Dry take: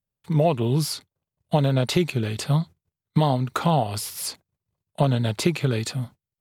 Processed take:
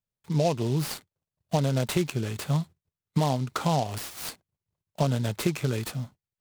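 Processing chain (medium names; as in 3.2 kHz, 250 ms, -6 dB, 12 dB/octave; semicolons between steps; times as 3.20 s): delay time shaken by noise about 4.1 kHz, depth 0.041 ms; trim -4.5 dB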